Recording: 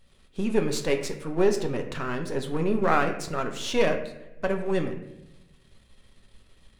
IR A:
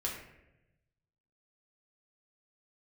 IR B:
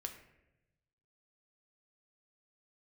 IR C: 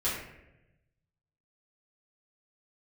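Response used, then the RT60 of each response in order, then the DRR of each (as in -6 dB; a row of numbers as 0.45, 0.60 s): B; 0.95, 0.95, 0.95 s; -3.0, 4.0, -10.5 dB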